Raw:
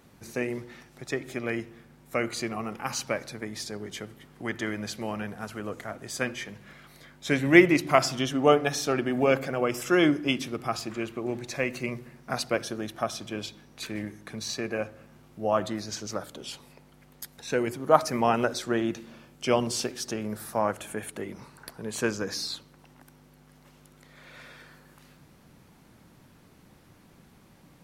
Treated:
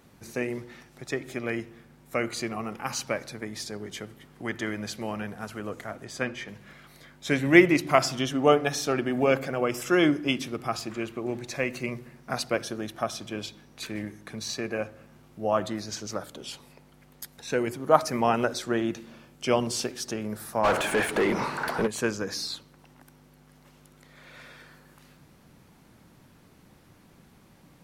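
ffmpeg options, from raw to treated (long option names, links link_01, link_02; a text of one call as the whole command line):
ffmpeg -i in.wav -filter_complex "[0:a]asettb=1/sr,asplit=3[link_01][link_02][link_03];[link_01]atrim=end=6.044[link_04];[link_02]atrim=start=6.04:end=6.48,asetpts=PTS-STARTPTS,afade=type=in:duration=0.004:curve=qsin,afade=type=out:start_time=0.436:duration=0.004:curve=qsin,highshelf=frequency=6900:gain=-12[link_05];[link_03]atrim=start=6.476[link_06];[link_04][link_05]acrossfade=duration=0.004:curve1=hsin:curve2=qsin[link_07];[link_07][link_06]acrossfade=duration=0.004:curve1=qsin:curve2=hsin,asplit=3[link_08][link_09][link_10];[link_08]afade=type=out:start_time=20.63:duration=0.02[link_11];[link_09]asplit=2[link_12][link_13];[link_13]highpass=frequency=720:poles=1,volume=33dB,asoftclip=type=tanh:threshold=-13.5dB[link_14];[link_12][link_14]amix=inputs=2:normalize=0,lowpass=frequency=1600:poles=1,volume=-6dB,afade=type=in:start_time=20.63:duration=0.02,afade=type=out:start_time=21.86:duration=0.02[link_15];[link_10]afade=type=in:start_time=21.86:duration=0.02[link_16];[link_11][link_15][link_16]amix=inputs=3:normalize=0" out.wav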